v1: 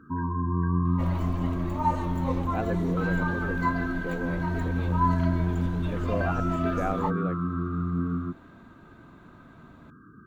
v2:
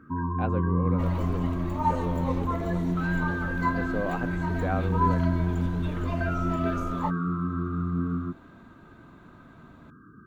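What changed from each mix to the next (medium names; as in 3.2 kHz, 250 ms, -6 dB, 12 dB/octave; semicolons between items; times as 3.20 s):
speech: entry -2.15 s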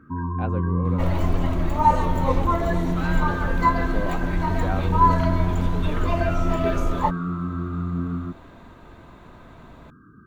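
second sound +8.5 dB; master: add bass shelf 88 Hz +6 dB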